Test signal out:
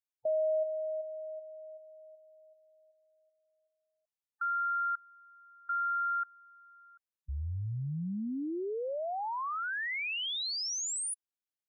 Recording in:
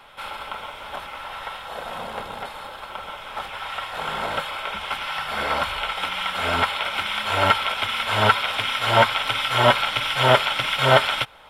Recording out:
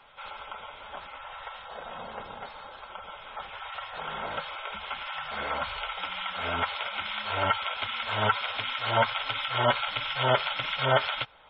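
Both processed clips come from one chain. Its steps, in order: spectral gate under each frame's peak -20 dB strong; trim -7.5 dB

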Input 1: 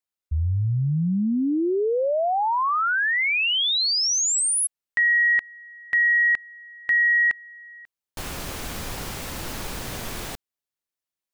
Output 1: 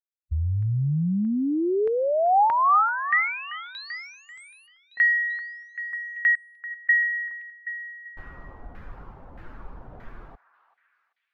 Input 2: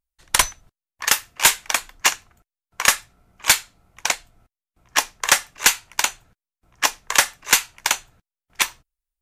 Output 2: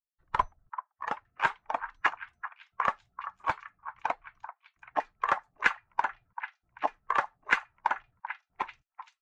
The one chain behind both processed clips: expander on every frequency bin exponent 1.5; dynamic bell 150 Hz, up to +4 dB, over -44 dBFS, Q 2.1; compression 6:1, threshold -22 dBFS; LFO low-pass saw down 1.6 Hz 740–1800 Hz; repeats whose band climbs or falls 388 ms, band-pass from 1.2 kHz, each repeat 0.7 oct, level -10.5 dB

